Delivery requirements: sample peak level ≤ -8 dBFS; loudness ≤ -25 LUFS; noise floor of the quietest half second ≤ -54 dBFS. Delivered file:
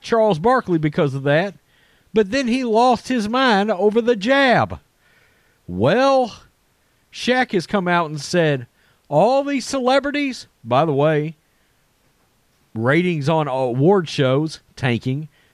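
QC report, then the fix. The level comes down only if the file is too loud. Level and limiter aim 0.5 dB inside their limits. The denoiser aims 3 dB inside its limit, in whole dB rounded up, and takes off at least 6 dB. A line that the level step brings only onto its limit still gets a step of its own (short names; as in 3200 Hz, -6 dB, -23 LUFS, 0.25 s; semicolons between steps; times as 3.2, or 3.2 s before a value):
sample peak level -6.0 dBFS: fail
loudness -18.5 LUFS: fail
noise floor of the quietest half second -61 dBFS: OK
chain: gain -7 dB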